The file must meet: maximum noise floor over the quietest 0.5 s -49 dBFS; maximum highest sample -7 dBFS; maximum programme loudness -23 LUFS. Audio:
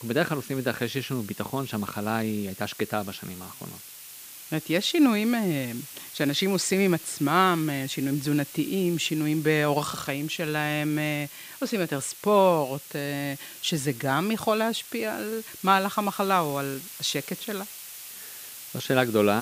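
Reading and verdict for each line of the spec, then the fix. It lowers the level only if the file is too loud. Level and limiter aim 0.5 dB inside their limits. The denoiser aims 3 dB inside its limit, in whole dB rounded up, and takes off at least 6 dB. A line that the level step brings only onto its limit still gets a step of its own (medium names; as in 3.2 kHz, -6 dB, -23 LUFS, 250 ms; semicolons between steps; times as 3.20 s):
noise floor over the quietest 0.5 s -44 dBFS: fail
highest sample -4.5 dBFS: fail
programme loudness -26.5 LUFS: pass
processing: noise reduction 8 dB, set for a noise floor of -44 dBFS; peak limiter -7.5 dBFS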